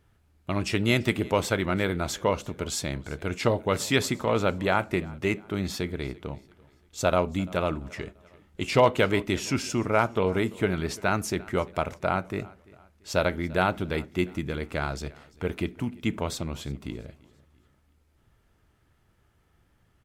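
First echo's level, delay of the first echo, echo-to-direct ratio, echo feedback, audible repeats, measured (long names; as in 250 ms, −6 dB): −23.0 dB, 341 ms, −22.0 dB, 41%, 2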